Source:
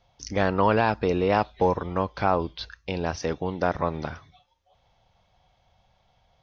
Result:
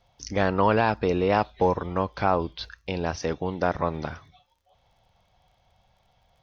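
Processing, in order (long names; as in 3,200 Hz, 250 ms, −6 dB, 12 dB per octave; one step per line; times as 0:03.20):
surface crackle 38 per second −57 dBFS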